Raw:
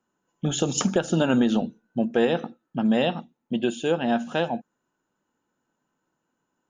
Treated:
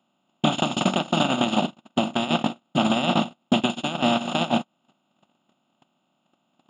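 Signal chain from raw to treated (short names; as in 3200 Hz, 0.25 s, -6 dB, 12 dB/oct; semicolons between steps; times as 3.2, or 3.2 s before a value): per-bin compression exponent 0.2; compressor 2.5:1, threshold -19 dBFS, peak gain reduction 6.5 dB; fixed phaser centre 1700 Hz, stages 6; on a send: echo with dull and thin repeats by turns 0.329 s, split 900 Hz, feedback 60%, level -13 dB; on the sum: gate -22 dBFS, range -57 dB; HPF 310 Hz 6 dB/oct; maximiser +25.5 dB; gain -7.5 dB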